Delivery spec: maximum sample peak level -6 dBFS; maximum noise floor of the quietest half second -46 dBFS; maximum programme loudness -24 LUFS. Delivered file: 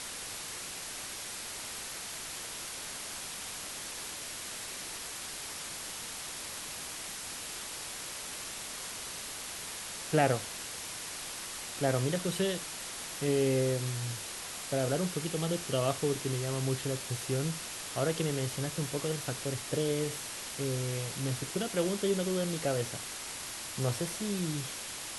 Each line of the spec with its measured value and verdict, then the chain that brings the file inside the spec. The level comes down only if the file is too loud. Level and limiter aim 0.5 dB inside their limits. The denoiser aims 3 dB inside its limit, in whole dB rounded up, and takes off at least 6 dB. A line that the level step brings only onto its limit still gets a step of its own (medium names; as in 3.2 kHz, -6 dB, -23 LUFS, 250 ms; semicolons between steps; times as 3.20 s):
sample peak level -12.0 dBFS: pass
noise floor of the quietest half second -41 dBFS: fail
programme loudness -34.5 LUFS: pass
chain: noise reduction 8 dB, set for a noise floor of -41 dBFS